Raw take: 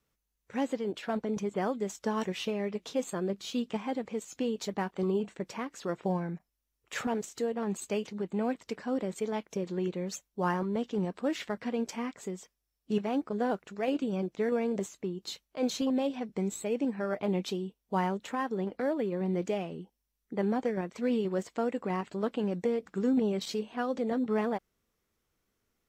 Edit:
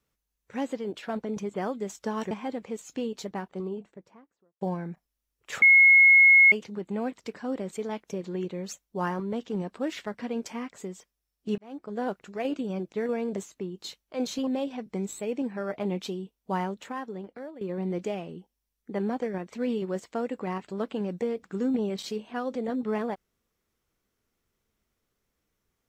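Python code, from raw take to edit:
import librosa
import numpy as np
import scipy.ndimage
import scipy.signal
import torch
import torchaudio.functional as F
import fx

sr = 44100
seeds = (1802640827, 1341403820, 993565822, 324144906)

y = fx.studio_fade_out(x, sr, start_s=4.36, length_s=1.68)
y = fx.edit(y, sr, fx.cut(start_s=2.31, length_s=1.43),
    fx.bleep(start_s=7.05, length_s=0.9, hz=2170.0, db=-12.5),
    fx.fade_in_span(start_s=13.01, length_s=0.49),
    fx.fade_out_to(start_s=18.05, length_s=0.99, floor_db=-15.0), tone=tone)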